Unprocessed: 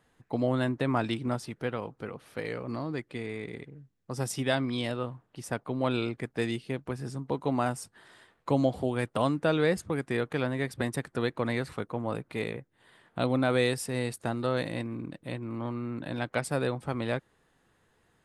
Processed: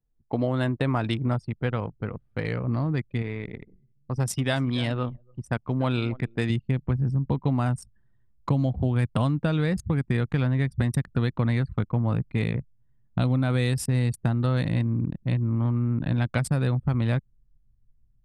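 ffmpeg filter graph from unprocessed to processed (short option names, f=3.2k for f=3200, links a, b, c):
-filter_complex "[0:a]asettb=1/sr,asplit=3[a][b][c];[a]atrim=end=3.224[d];[b]atrim=start=3.22:end=6.5,asetpts=PTS-STARTPTS,afade=t=in:d=0.004:c=qsin,afade=t=out:st=3.276:d=0.004:c=qsin,bass=f=250:g=-6,treble=f=4k:g=-1,aecho=1:1:284:0.15,atrim=end_sample=144648[e];[c]atrim=start=6.496[f];[d][e]acrossfade=d=0.004:c1=hsin:c2=qsin[g];[g][f]acrossfade=d=0.004:c1=qsin:c2=hsin,anlmdn=1,asubboost=boost=6.5:cutoff=160,acompressor=threshold=-26dB:ratio=6,volume=5.5dB"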